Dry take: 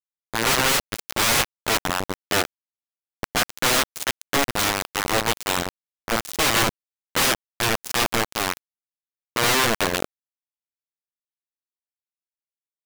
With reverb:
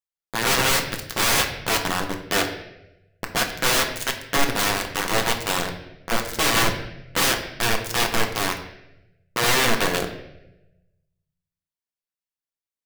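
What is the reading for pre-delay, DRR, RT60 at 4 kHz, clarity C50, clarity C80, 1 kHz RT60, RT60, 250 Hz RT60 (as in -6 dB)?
4 ms, 3.0 dB, 0.75 s, 8.5 dB, 10.5 dB, 0.75 s, 0.95 s, 1.2 s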